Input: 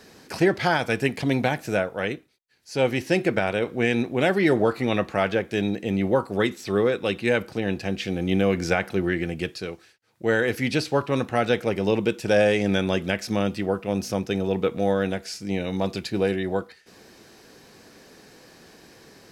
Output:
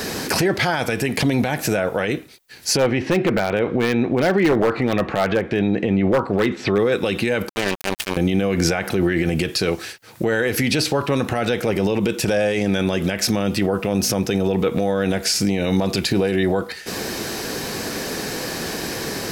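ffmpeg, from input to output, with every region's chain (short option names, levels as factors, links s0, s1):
-filter_complex "[0:a]asettb=1/sr,asplit=3[s0][s1][s2];[s0]atrim=end=2.774[s3];[s1]atrim=start=2.77:end=6.79,asetpts=PTS-STARTPTS,afade=t=in:d=0.004:c=qsin,afade=t=out:st=4.016:d=0.004:c=qsin,lowpass=2500,aeval=exprs='0.211*(abs(mod(val(0)/0.211+3,4)-2)-1)':c=same[s4];[s2]atrim=start=6.786[s5];[s3][s4]acrossfade=d=0.004:c1=hsin:c2=qsin[s6];[s6][s5]acrossfade=d=0.004:c1=qsin:c2=hsin,asettb=1/sr,asplit=3[s7][s8][s9];[s7]atrim=end=7.494[s10];[s8]atrim=start=7.49:end=8.17,asetpts=PTS-STARTPTS,afade=t=in:d=0.004:c=qsin,afade=t=out:st=0.676:d=0.004:c=qsin,bass=f=250:g=-13,treble=f=4000:g=-1,aecho=1:1:5.1:0.55,atrim=end_sample=29988,acrusher=bits=3:mix=0:aa=0.5[s11];[s9]atrim=start=8.166[s12];[s10][s11]acrossfade=d=0.004:c1=hsin:c2=qsin[s13];[s13][s12]acrossfade=d=0.004:c1=qsin:c2=hsin,highshelf=f=11000:g=9,acompressor=threshold=0.0158:ratio=3,alimiter=level_in=35.5:limit=0.891:release=50:level=0:latency=1,volume=0.376"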